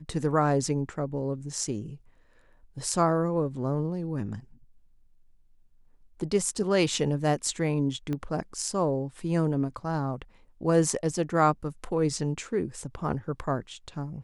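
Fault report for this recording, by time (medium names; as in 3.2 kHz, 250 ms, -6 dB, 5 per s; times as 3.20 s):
8.13 s: pop -20 dBFS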